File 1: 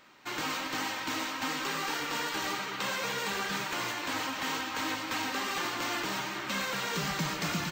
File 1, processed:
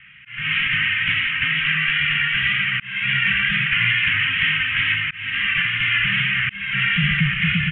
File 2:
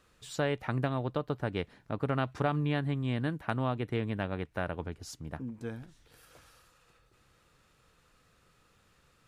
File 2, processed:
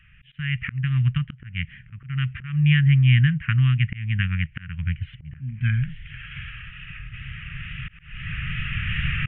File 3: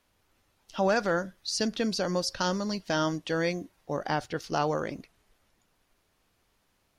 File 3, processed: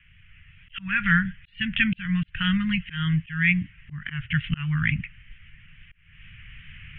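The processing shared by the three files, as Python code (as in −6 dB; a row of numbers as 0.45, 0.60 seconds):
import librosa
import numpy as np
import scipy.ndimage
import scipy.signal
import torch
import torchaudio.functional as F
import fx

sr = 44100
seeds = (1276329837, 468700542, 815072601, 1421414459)

y = fx.recorder_agc(x, sr, target_db=-19.5, rise_db_per_s=6.5, max_gain_db=30)
y = scipy.signal.sosfilt(scipy.signal.ellip(3, 1.0, 60, [150.0, 1900.0], 'bandstop', fs=sr, output='sos'), y)
y = fx.auto_swell(y, sr, attack_ms=326.0)
y = scipy.signal.sosfilt(scipy.signal.butter(16, 3100.0, 'lowpass', fs=sr, output='sos'), y)
y = fx.wow_flutter(y, sr, seeds[0], rate_hz=2.1, depth_cents=26.0)
y = librosa.util.normalize(y) * 10.0 ** (-6 / 20.0)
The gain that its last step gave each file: +17.5, +16.5, +20.5 decibels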